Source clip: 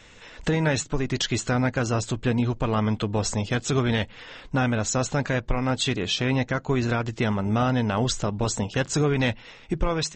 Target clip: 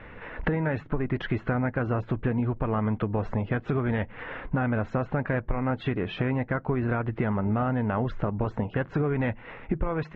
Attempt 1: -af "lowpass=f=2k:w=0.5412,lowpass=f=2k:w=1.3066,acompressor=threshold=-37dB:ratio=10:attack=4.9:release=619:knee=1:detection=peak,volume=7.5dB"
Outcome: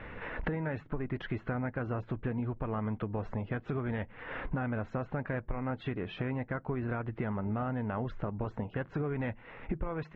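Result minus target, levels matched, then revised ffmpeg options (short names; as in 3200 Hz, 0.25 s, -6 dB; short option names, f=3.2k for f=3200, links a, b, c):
compressor: peak gain reduction +7.5 dB
-af "lowpass=f=2k:w=0.5412,lowpass=f=2k:w=1.3066,acompressor=threshold=-28.5dB:ratio=10:attack=4.9:release=619:knee=1:detection=peak,volume=7.5dB"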